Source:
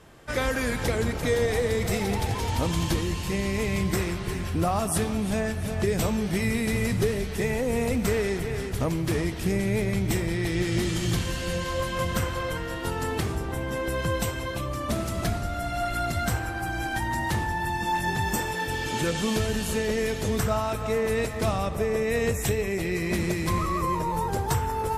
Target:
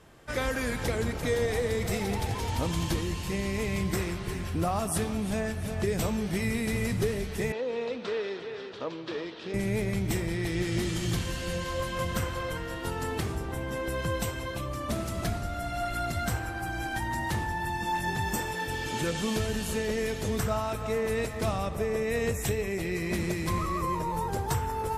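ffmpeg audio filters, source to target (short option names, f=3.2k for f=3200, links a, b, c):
-filter_complex "[0:a]asettb=1/sr,asplit=3[a][b][c];[a]atrim=end=7.524[d];[b]atrim=start=7.52:end=9.54,asetpts=PTS-STARTPTS,afade=t=in:d=0.004:c=qsin,afade=t=out:st=2.016:d=0.004:c=qsin,highpass=410,equalizer=f=490:t=q:w=4:g=3,equalizer=f=730:t=q:w=4:g=-6,equalizer=f=2.1k:t=q:w=4:g=-8,equalizer=f=3.7k:t=q:w=4:g=4,lowpass=f=4.4k:w=0.5412,lowpass=f=4.4k:w=1.3066[e];[c]atrim=start=9.536[f];[d][e]acrossfade=d=0.004:c1=hsin:c2=qsin[g];[g][f]acrossfade=d=0.004:c1=qsin:c2=hsin,volume=-3.5dB"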